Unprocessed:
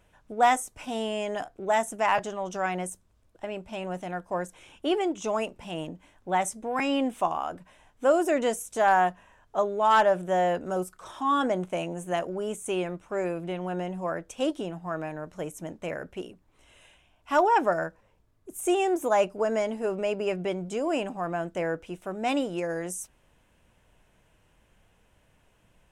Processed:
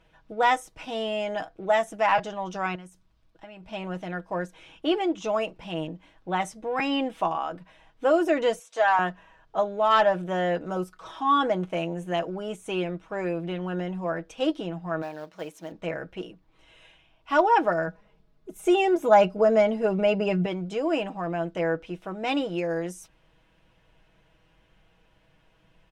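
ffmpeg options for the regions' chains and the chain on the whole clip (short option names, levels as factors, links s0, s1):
-filter_complex "[0:a]asettb=1/sr,asplit=3[s0][s1][s2];[s0]atrim=end=2.754[s3];[s1]atrim=start=2.75:end=3.63,asetpts=PTS-STARTPTS,afade=t=in:d=0.004:c=qsin,afade=t=out:st=0.876:d=0.004:c=qsin,equalizer=f=480:t=o:w=0.92:g=-7,acompressor=threshold=0.00631:ratio=3:attack=3.2:release=140:knee=1:detection=peak[s4];[s2]atrim=start=3.626[s5];[s3][s4]acrossfade=d=0.004:c1=hsin:c2=qsin[s6];[s6][s5]acrossfade=d=0.004:c1=qsin:c2=hsin,asettb=1/sr,asplit=3[s7][s8][s9];[s7]atrim=end=8.594[s10];[s8]atrim=start=8.59:end=8.99,asetpts=PTS-STARTPTS,afade=t=in:d=0.004:c=qsin,afade=t=out:st=0.396:d=0.004:c=qsin,highpass=600,lowpass=7900,aecho=1:1:4.4:0.41,atrim=end_sample=17640[s11];[s9]atrim=start=8.986[s12];[s10][s11]acrossfade=d=0.004:c1=hsin:c2=qsin[s13];[s13][s12]acrossfade=d=0.004:c1=qsin:c2=hsin,asettb=1/sr,asplit=3[s14][s15][s16];[s14]atrim=end=15.024[s17];[s15]atrim=start=15.02:end=15.72,asetpts=PTS-STARTPTS,afade=t=in:d=0.004:c=qsin,afade=t=out:st=0.696:d=0.004:c=qsin,highpass=f=510:p=1,acrusher=bits=4:mode=log:mix=0:aa=0.000001[s18];[s16]atrim=start=15.716[s19];[s17][s18]acrossfade=d=0.004:c1=hsin:c2=qsin[s20];[s20][s19]acrossfade=d=0.004:c1=qsin:c2=hsin,asettb=1/sr,asplit=3[s21][s22][s23];[s21]atrim=end=17.874[s24];[s22]atrim=start=17.87:end=20.46,asetpts=PTS-STARTPTS,afade=t=in:d=0.004:c=qsin,afade=t=out:st=2.586:d=0.004:c=qsin,equalizer=f=190:t=o:w=1.9:g=4.5,aecho=1:1:4.8:0.58,atrim=end_sample=114219[s25];[s23]atrim=start=20.456[s26];[s24][s25]acrossfade=d=0.004:c1=hsin:c2=qsin[s27];[s27][s26]acrossfade=d=0.004:c1=qsin:c2=hsin,highshelf=f=6000:t=q:w=1.5:g=-9.5,aecho=1:1:6.2:0.55"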